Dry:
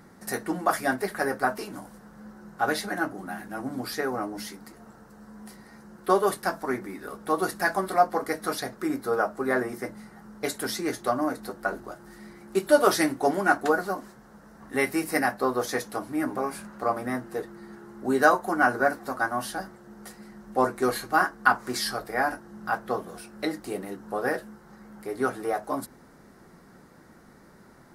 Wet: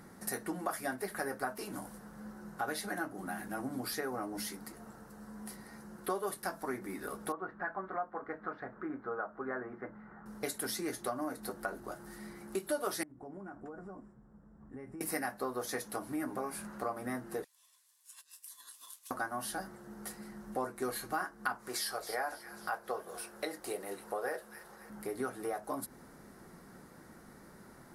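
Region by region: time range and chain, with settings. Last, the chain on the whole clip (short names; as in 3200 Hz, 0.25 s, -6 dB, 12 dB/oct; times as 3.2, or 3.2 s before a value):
7.32–10.26 upward compressor, threshold -36 dBFS + ladder low-pass 1800 Hz, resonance 40%
13.03–15.01 EQ curve 100 Hz 0 dB, 690 Hz -14 dB, 1200 Hz -15 dB, 3400 Hz -29 dB, 8300 Hz -4 dB, 13000 Hz -29 dB + compressor 10:1, threshold -40 dBFS + polynomial smoothing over 25 samples
17.44–19.11 rippled Chebyshev high-pass 2200 Hz, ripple 6 dB + negative-ratio compressor -51 dBFS, ratio -0.5 + ring modulator 1200 Hz
21.68–24.9 resonant low shelf 340 Hz -8.5 dB, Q 1.5 + thin delay 0.27 s, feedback 43%, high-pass 2300 Hz, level -13 dB
whole clip: bell 11000 Hz +7 dB 0.62 oct; compressor 3:1, threshold -34 dBFS; gain -2 dB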